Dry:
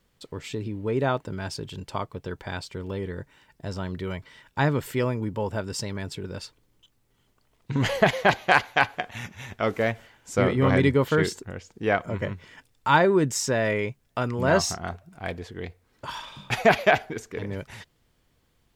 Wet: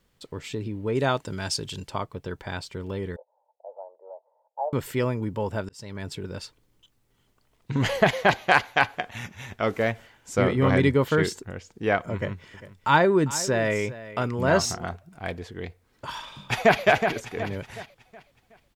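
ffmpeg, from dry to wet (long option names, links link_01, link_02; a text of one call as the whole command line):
ffmpeg -i in.wav -filter_complex "[0:a]asettb=1/sr,asplit=3[link_01][link_02][link_03];[link_01]atrim=end=0.954[link_04];[link_02]atrim=start=0.95:end=1.88,asetpts=PTS-STARTPTS,afade=type=in:duration=0.004:curve=qsin,afade=type=out:start_time=0.926:duration=0.004:curve=qsin,equalizer=frequency=7200:width=0.41:gain=10[link_05];[link_03]atrim=start=1.876[link_06];[link_04][link_05]acrossfade=duration=0.004:curve1=hsin:curve2=qsin[link_07];[link_07][link_06]acrossfade=duration=0.004:curve1=qsin:curve2=hsin,asettb=1/sr,asplit=3[link_08][link_09][link_10];[link_08]atrim=end=3.164[link_11];[link_09]atrim=start=3.16:end=4.73,asetpts=PTS-STARTPTS,afade=type=in:duration=0.004:curve=qsin,afade=type=out:start_time=1.566:duration=0.004:curve=qsin,asuperpass=centerf=670:order=8:qfactor=1.8[link_12];[link_10]atrim=start=4.726[link_13];[link_11][link_12]acrossfade=duration=0.004:curve1=hsin:curve2=qsin[link_14];[link_14][link_13]acrossfade=duration=0.004:curve1=qsin:curve2=hsin,asettb=1/sr,asplit=3[link_15][link_16][link_17];[link_15]atrim=end=12.144[link_18];[link_16]atrim=start=12.14:end=14.86,asetpts=PTS-STARTPTS,afade=type=in:duration=0.004:curve=qsin,afade=type=out:start_time=2.716:duration=0.004:curve=qsin,aecho=1:1:400:0.158,atrim=end_sample=119952[link_19];[link_17]atrim=start=14.856[link_20];[link_18][link_19]acrossfade=duration=0.004:curve1=hsin:curve2=qsin[link_21];[link_21][link_20]acrossfade=duration=0.004:curve1=qsin:curve2=hsin,asplit=2[link_22][link_23];[link_23]afade=type=in:start_time=16.12:duration=0.01,afade=type=out:start_time=16.83:duration=0.01,aecho=0:1:370|740|1110|1480|1850:0.473151|0.189261|0.0757042|0.0302817|0.0121127[link_24];[link_22][link_24]amix=inputs=2:normalize=0,asplit=2[link_25][link_26];[link_25]atrim=end=5.69,asetpts=PTS-STARTPTS,afade=type=out:start_time=5.686:duration=0.004:curve=hsin[link_27];[link_26]atrim=start=5.69,asetpts=PTS-STARTPTS,afade=type=in:duration=0.4[link_28];[link_27][link_28]concat=n=2:v=0:a=1" out.wav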